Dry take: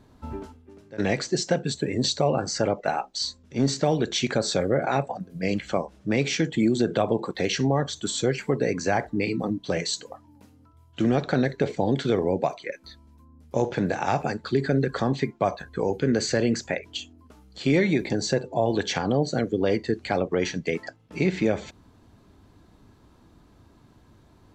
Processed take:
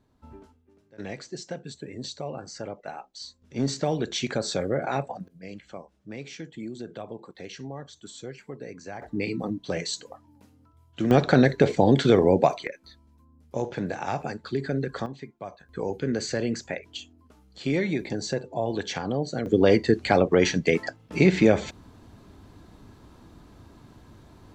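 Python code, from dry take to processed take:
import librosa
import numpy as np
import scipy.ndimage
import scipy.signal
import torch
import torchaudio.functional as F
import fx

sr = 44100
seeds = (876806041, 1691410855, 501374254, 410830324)

y = fx.gain(x, sr, db=fx.steps((0.0, -12.0), (3.42, -3.5), (5.28, -15.0), (9.02, -3.0), (11.11, 5.0), (12.67, -5.0), (15.06, -14.5), (15.69, -4.5), (19.46, 5.0)))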